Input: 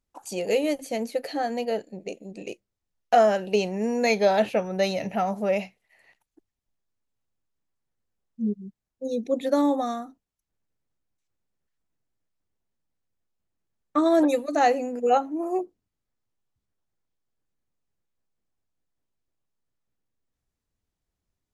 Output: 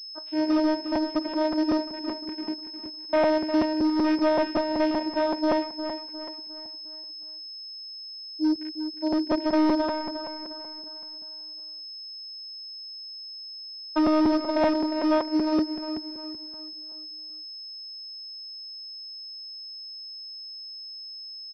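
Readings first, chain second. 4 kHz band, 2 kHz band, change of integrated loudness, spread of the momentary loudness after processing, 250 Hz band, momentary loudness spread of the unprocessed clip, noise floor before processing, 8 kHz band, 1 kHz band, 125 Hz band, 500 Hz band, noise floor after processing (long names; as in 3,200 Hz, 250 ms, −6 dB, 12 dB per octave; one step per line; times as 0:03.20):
+8.5 dB, −2.5 dB, −3.5 dB, 14 LU, +4.5 dB, 17 LU, −85 dBFS, below −10 dB, −3.5 dB, can't be measured, −2.5 dB, −40 dBFS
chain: loose part that buzzes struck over −40 dBFS, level −27 dBFS
in parallel at −2 dB: brickwall limiter −18 dBFS, peak gain reduction 9.5 dB
on the sum: channel vocoder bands 8, saw 310 Hz
gain into a clipping stage and back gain 18.5 dB
on a send: repeating echo 356 ms, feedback 44%, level −9 dB
on the sum: regular buffer underruns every 0.19 s, samples 256, repeat, from 0:00.95
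switching amplifier with a slow clock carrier 5,200 Hz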